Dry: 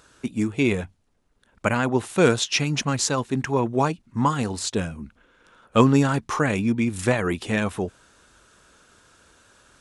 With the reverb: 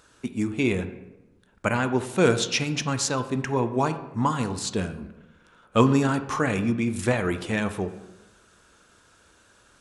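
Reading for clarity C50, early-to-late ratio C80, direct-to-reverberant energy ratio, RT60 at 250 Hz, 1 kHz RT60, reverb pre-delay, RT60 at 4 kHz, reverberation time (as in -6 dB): 12.0 dB, 14.0 dB, 9.0 dB, 1.2 s, 1.0 s, 7 ms, 0.65 s, 1.0 s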